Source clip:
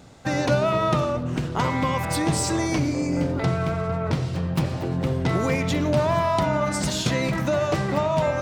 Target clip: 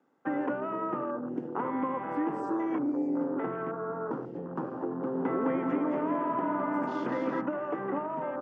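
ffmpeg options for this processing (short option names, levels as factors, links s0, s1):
-filter_complex "[0:a]afwtdn=0.0251,acrossover=split=250 2100:gain=0.0708 1 0.112[s0][s1][s2];[s0][s1][s2]amix=inputs=3:normalize=0,acrossover=split=620|1700[s3][s4][s5];[s3]acompressor=threshold=0.0316:ratio=4[s6];[s4]acompressor=threshold=0.02:ratio=4[s7];[s5]acompressor=threshold=0.00251:ratio=4[s8];[s6][s7][s8]amix=inputs=3:normalize=0,highpass=f=140:w=0.5412,highpass=f=140:w=1.3066,equalizer=f=160:t=q:w=4:g=-4,equalizer=f=280:t=q:w=4:g=4,equalizer=f=640:t=q:w=4:g=-10,equalizer=f=2300:t=q:w=4:g=-6,equalizer=f=4000:t=q:w=4:g=-8,lowpass=f=8000:w=0.5412,lowpass=f=8000:w=1.3066,asplit=3[s9][s10][s11];[s9]afade=t=out:st=5.13:d=0.02[s12];[s10]aecho=1:1:210|378|512.4|619.9|705.9:0.631|0.398|0.251|0.158|0.1,afade=t=in:st=5.13:d=0.02,afade=t=out:st=7.4:d=0.02[s13];[s11]afade=t=in:st=7.4:d=0.02[s14];[s12][s13][s14]amix=inputs=3:normalize=0"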